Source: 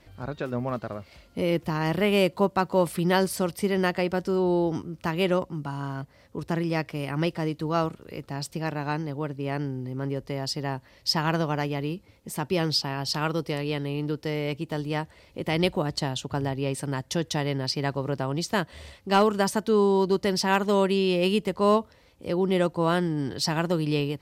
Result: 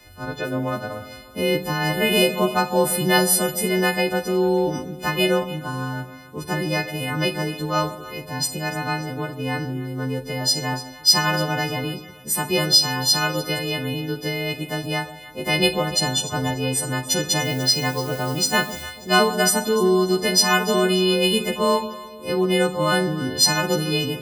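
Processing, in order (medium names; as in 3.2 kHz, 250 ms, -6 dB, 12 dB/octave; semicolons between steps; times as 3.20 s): partials quantised in pitch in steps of 3 st; 17.43–18.82 s: added noise blue -45 dBFS; echo whose repeats swap between lows and highs 147 ms, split 810 Hz, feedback 60%, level -12 dB; Schroeder reverb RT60 0.46 s, combs from 27 ms, DRR 9 dB; trim +3 dB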